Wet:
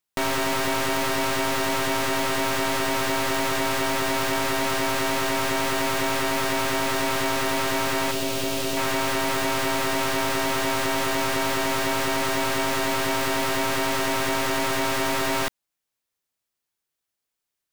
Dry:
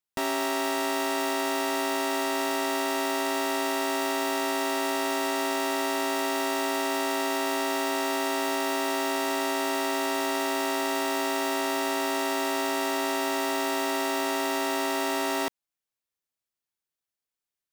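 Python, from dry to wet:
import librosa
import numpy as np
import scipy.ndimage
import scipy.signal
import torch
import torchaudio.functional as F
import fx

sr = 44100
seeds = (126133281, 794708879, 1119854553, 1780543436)

y = np.minimum(x, 2.0 * 10.0 ** (-31.0 / 20.0) - x)
y = fx.band_shelf(y, sr, hz=1300.0, db=-8.5, octaves=1.7, at=(8.11, 8.77))
y = y * librosa.db_to_amplitude(6.0)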